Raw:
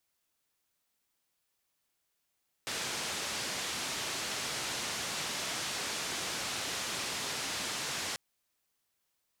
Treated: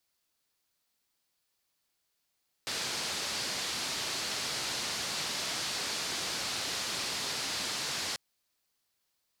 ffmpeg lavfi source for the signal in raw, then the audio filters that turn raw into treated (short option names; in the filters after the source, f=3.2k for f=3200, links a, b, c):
-f lavfi -i "anoisesrc=c=white:d=5.49:r=44100:seed=1,highpass=f=87,lowpass=f=6500,volume=-26.6dB"
-af "equalizer=f=4.5k:t=o:w=0.55:g=5"